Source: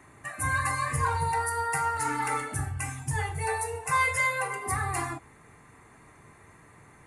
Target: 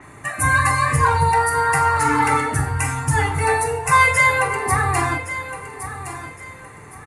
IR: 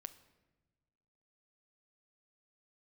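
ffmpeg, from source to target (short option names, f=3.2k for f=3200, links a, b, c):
-filter_complex "[0:a]aecho=1:1:1115|2230|3345:0.237|0.0664|0.0186,asplit=2[a][b];[1:a]atrim=start_sample=2205[c];[b][c]afir=irnorm=-1:irlink=0,volume=13.5dB[d];[a][d]amix=inputs=2:normalize=0,adynamicequalizer=threshold=0.0158:dfrequency=5600:dqfactor=0.7:tfrequency=5600:tqfactor=0.7:attack=5:release=100:ratio=0.375:range=2.5:mode=cutabove:tftype=highshelf"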